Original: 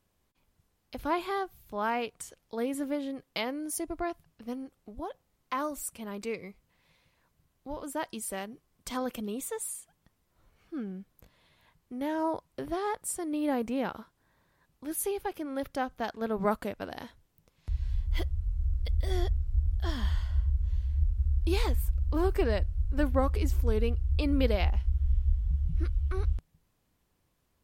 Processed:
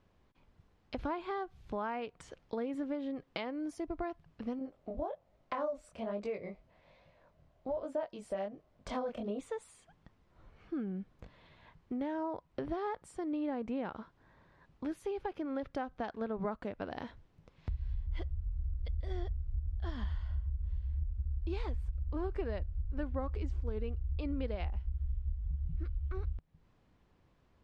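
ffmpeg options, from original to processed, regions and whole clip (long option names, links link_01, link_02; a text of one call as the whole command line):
ffmpeg -i in.wav -filter_complex "[0:a]asettb=1/sr,asplit=3[link_01][link_02][link_03];[link_01]atrim=end=4.594[link_04];[link_02]atrim=start=4.59:end=9.39,asetpts=PTS-STARTPTS,afade=type=in:duration=0.004:curve=qsin,afade=type=out:start_time=4.796:duration=0.004:curve=qsin,equalizer=frequency=620:width=3.2:gain=14,flanger=delay=19:depth=7.8:speed=1.2[link_05];[link_03]atrim=start=9.386[link_06];[link_04][link_05]acrossfade=duration=0.004:curve1=hsin:curve2=qsin[link_07];[link_07][link_06]acrossfade=duration=0.004:curve1=qsin:curve2=hsin,acompressor=threshold=-42dB:ratio=4,lowpass=6200,aemphasis=mode=reproduction:type=75fm,volume=5.5dB" out.wav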